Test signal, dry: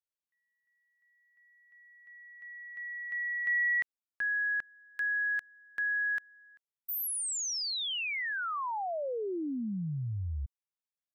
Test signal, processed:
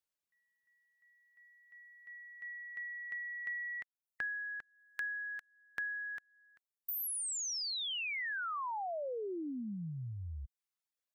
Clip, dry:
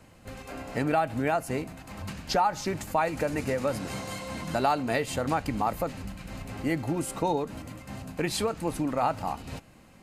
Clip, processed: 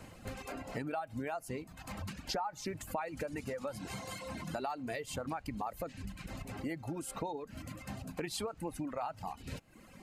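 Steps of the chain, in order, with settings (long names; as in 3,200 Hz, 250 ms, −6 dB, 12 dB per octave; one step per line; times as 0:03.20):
downward compressor 3 to 1, threshold −43 dBFS
reverb reduction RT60 1.3 s
level +3.5 dB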